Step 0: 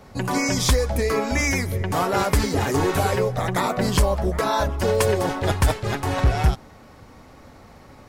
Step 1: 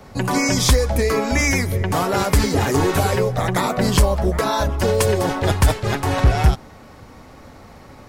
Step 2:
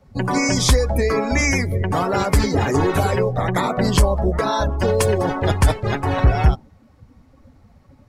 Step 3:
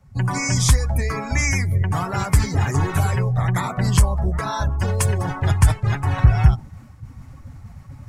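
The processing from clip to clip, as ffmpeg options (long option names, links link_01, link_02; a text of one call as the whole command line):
ffmpeg -i in.wav -filter_complex "[0:a]acrossover=split=330|3000[link_01][link_02][link_03];[link_02]acompressor=threshold=-22dB:ratio=6[link_04];[link_01][link_04][link_03]amix=inputs=3:normalize=0,volume=4dB" out.wav
ffmpeg -i in.wav -af "afftdn=noise_reduction=17:noise_floor=-31" out.wav
ffmpeg -i in.wav -af "equalizer=frequency=125:width_type=o:width=1:gain=8,equalizer=frequency=250:width_type=o:width=1:gain=-7,equalizer=frequency=500:width_type=o:width=1:gain=-11,equalizer=frequency=4000:width_type=o:width=1:gain=-6,equalizer=frequency=8000:width_type=o:width=1:gain=4,areverse,acompressor=mode=upward:threshold=-26dB:ratio=2.5,areverse,volume=-1dB" out.wav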